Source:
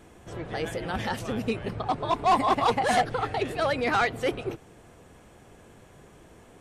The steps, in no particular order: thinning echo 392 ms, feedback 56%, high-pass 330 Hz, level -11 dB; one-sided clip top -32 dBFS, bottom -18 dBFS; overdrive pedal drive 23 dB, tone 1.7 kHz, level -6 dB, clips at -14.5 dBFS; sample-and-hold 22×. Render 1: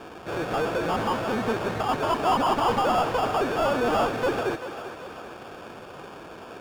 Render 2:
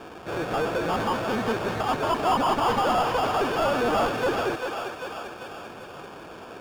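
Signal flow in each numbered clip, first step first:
sample-and-hold > one-sided clip > overdrive pedal > thinning echo; one-sided clip > sample-and-hold > thinning echo > overdrive pedal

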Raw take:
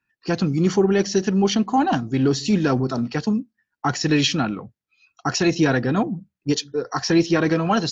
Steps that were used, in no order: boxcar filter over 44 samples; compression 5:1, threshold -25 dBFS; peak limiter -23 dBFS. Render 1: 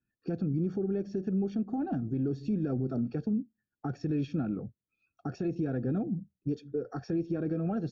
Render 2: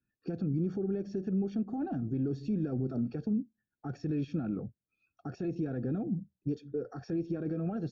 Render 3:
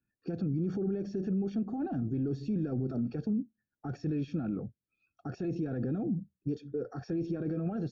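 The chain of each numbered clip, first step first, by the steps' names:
compression > boxcar filter > peak limiter; compression > peak limiter > boxcar filter; peak limiter > compression > boxcar filter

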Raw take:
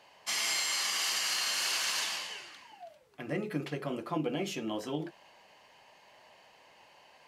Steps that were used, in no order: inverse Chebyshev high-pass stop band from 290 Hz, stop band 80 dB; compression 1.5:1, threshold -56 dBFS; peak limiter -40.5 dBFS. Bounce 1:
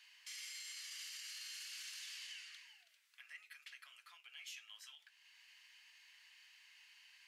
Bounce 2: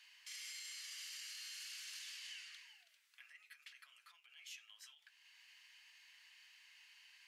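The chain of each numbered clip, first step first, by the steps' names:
compression > inverse Chebyshev high-pass > peak limiter; compression > peak limiter > inverse Chebyshev high-pass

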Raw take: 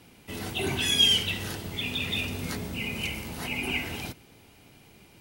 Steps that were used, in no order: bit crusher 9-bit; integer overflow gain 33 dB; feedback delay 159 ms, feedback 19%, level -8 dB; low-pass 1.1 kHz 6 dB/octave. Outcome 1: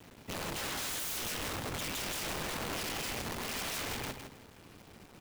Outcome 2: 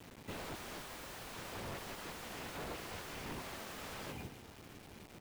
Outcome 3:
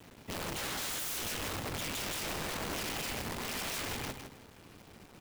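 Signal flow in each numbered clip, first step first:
low-pass > bit crusher > integer overflow > feedback delay; feedback delay > integer overflow > low-pass > bit crusher; low-pass > integer overflow > bit crusher > feedback delay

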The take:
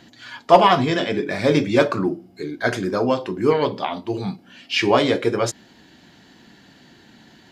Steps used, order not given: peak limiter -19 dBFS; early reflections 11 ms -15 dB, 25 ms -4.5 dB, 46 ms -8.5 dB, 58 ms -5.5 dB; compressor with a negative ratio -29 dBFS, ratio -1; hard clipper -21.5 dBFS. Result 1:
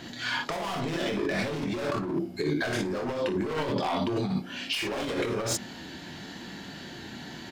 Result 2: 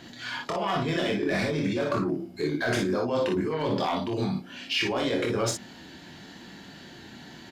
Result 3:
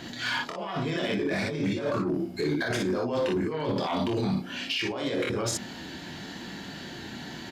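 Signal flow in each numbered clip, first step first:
hard clipper > early reflections > compressor with a negative ratio > peak limiter; peak limiter > compressor with a negative ratio > hard clipper > early reflections; compressor with a negative ratio > early reflections > peak limiter > hard clipper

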